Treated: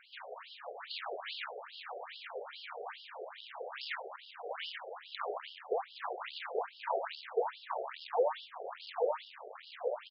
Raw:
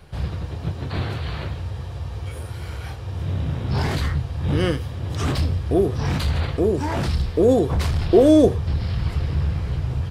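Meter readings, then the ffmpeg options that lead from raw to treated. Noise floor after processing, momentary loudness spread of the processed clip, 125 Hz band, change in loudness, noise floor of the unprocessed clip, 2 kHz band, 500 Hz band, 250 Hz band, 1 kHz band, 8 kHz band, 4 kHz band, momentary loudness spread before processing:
-55 dBFS, 12 LU, under -40 dB, -17.5 dB, -33 dBFS, -9.5 dB, -15.0 dB, under -35 dB, -6.5 dB, under -40 dB, -9.5 dB, 14 LU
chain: -filter_complex "[0:a]asplit=2[s0][s1];[s1]adelay=831,lowpass=f=2800:p=1,volume=0.562,asplit=2[s2][s3];[s3]adelay=831,lowpass=f=2800:p=1,volume=0.31,asplit=2[s4][s5];[s5]adelay=831,lowpass=f=2800:p=1,volume=0.31,asplit=2[s6][s7];[s7]adelay=831,lowpass=f=2800:p=1,volume=0.31[s8];[s0][s2][s4][s6][s8]amix=inputs=5:normalize=0,flanger=delay=8.4:depth=9.6:regen=-73:speed=1.8:shape=sinusoidal,aresample=11025,aeval=exprs='clip(val(0),-1,0.0376)':c=same,aresample=44100,acompressor=threshold=0.0447:ratio=4,afftfilt=real='re*between(b*sr/1024,540*pow(4000/540,0.5+0.5*sin(2*PI*2.4*pts/sr))/1.41,540*pow(4000/540,0.5+0.5*sin(2*PI*2.4*pts/sr))*1.41)':imag='im*between(b*sr/1024,540*pow(4000/540,0.5+0.5*sin(2*PI*2.4*pts/sr))/1.41,540*pow(4000/540,0.5+0.5*sin(2*PI*2.4*pts/sr))*1.41)':win_size=1024:overlap=0.75,volume=1.88"

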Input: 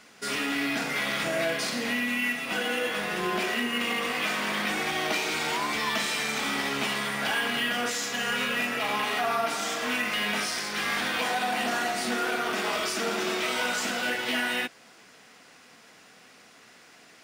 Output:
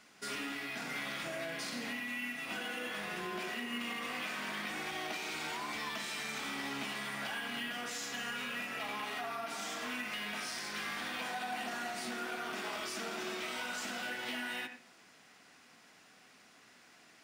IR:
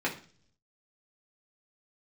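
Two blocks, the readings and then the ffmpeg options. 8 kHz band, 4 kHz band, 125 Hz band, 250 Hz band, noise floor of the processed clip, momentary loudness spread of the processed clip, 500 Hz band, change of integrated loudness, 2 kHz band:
-10.5 dB, -11.0 dB, -11.0 dB, -11.0 dB, -61 dBFS, 1 LU, -13.0 dB, -11.0 dB, -11.0 dB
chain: -filter_complex "[0:a]equalizer=f=480:w=4.5:g=-5,acompressor=threshold=0.0355:ratio=6,asplit=2[s0][s1];[1:a]atrim=start_sample=2205,adelay=81[s2];[s1][s2]afir=irnorm=-1:irlink=0,volume=0.119[s3];[s0][s3]amix=inputs=2:normalize=0,volume=0.422"

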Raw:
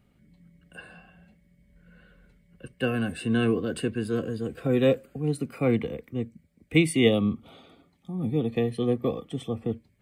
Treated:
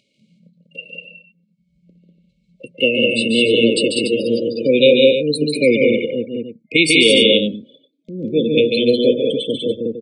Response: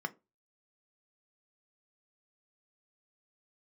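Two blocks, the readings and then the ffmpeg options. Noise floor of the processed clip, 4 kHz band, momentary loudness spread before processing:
-65 dBFS, +21.0 dB, 12 LU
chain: -filter_complex "[0:a]afftdn=nr=34:nf=-43,agate=range=0.112:threshold=0.00224:ratio=16:detection=peak,highpass=370,equalizer=f=390:t=q:w=4:g=-5,equalizer=f=1200:t=q:w=4:g=-7,equalizer=f=4100:t=q:w=4:g=5,lowpass=f=6400:w=0.5412,lowpass=f=6400:w=1.3066,acompressor=mode=upward:threshold=0.00316:ratio=2.5,flanger=delay=1.2:depth=1.6:regen=90:speed=0.8:shape=sinusoidal,afftfilt=real='re*(1-between(b*sr/4096,630,2100))':imag='im*(1-between(b*sr/4096,630,2100))':win_size=4096:overlap=0.75,asplit=2[s0][s1];[s1]aecho=0:1:142.9|195.3|288.6:0.562|0.708|0.316[s2];[s0][s2]amix=inputs=2:normalize=0,crystalizer=i=3:c=0,alimiter=level_in=10:limit=0.891:release=50:level=0:latency=1,volume=0.891"

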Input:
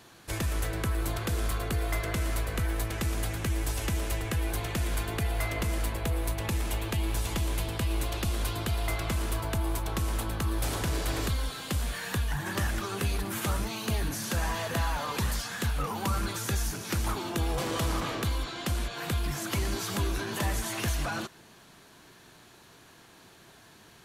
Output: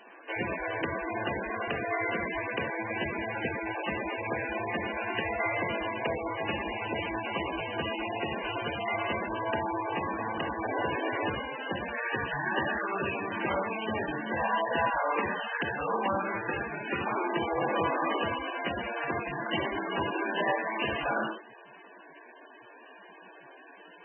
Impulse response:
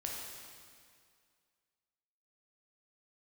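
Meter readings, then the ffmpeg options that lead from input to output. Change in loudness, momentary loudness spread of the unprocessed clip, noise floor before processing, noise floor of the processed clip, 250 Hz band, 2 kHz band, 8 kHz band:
0.0 dB, 2 LU, -55 dBFS, -52 dBFS, 0.0 dB, +5.5 dB, under -40 dB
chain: -filter_complex "[0:a]highpass=330,bandreject=f=1300:w=8[s0];[1:a]atrim=start_sample=2205,atrim=end_sample=6174[s1];[s0][s1]afir=irnorm=-1:irlink=0,volume=2.24" -ar 22050 -c:a libmp3lame -b:a 8k

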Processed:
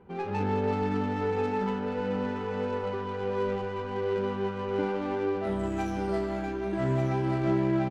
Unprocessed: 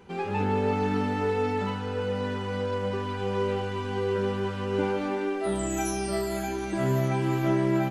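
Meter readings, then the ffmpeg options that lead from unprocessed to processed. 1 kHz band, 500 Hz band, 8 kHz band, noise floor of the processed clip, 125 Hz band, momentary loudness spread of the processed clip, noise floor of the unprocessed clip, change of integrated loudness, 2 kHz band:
-1.5 dB, -1.5 dB, under -15 dB, -35 dBFS, -2.5 dB, 5 LU, -33 dBFS, -2.0 dB, -3.5 dB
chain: -af "adynamicsmooth=sensitivity=3.5:basefreq=1500,aecho=1:1:1189:0.422,volume=0.794"

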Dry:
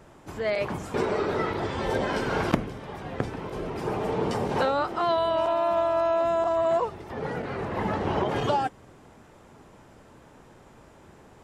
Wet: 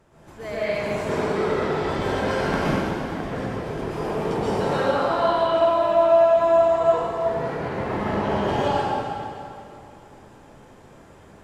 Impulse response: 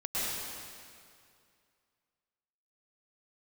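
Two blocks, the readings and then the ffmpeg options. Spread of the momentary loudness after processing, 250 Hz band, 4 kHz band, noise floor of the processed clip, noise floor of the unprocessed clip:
12 LU, +4.0 dB, +3.0 dB, -49 dBFS, -53 dBFS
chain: -filter_complex "[1:a]atrim=start_sample=2205,asetrate=38367,aresample=44100[s0];[0:a][s0]afir=irnorm=-1:irlink=0,volume=0.562"

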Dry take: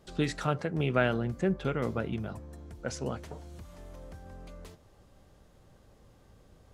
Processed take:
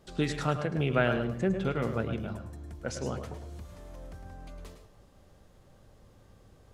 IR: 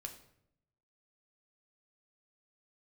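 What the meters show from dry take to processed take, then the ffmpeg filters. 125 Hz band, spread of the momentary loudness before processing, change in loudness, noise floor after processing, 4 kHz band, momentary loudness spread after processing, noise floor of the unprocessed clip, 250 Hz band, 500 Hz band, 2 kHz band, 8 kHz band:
+1.0 dB, 20 LU, +0.5 dB, -59 dBFS, +0.5 dB, 20 LU, -60 dBFS, +0.5 dB, +1.0 dB, +0.5 dB, +0.5 dB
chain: -filter_complex "[0:a]asplit=2[s0][s1];[1:a]atrim=start_sample=2205,adelay=106[s2];[s1][s2]afir=irnorm=-1:irlink=0,volume=0.631[s3];[s0][s3]amix=inputs=2:normalize=0"

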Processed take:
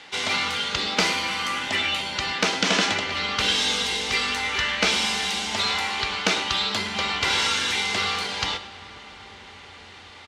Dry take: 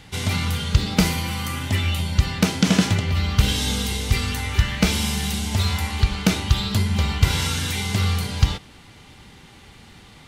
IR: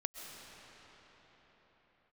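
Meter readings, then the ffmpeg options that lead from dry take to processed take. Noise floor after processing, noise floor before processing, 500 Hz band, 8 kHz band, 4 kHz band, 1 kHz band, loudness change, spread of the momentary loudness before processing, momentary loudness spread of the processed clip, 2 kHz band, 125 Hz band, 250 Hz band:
-45 dBFS, -47 dBFS, +0.5 dB, -1.0 dB, +4.0 dB, +4.0 dB, -0.5 dB, 4 LU, 10 LU, +5.0 dB, -19.5 dB, -10.0 dB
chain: -filter_complex "[0:a]asplit=2[s0][s1];[s1]highpass=f=720:p=1,volume=3.55,asoftclip=type=tanh:threshold=0.794[s2];[s0][s2]amix=inputs=2:normalize=0,lowpass=f=6000:p=1,volume=0.501,acrossover=split=250 7900:gain=0.1 1 0.112[s3][s4][s5];[s3][s4][s5]amix=inputs=3:normalize=0,asplit=2[s6][s7];[s7]adelay=105,volume=0.2,highshelf=f=4000:g=-2.36[s8];[s6][s8]amix=inputs=2:normalize=0,asplit=2[s9][s10];[1:a]atrim=start_sample=2205,asetrate=26019,aresample=44100,lowshelf=f=160:g=12[s11];[s10][s11]afir=irnorm=-1:irlink=0,volume=0.158[s12];[s9][s12]amix=inputs=2:normalize=0,volume=0.75"

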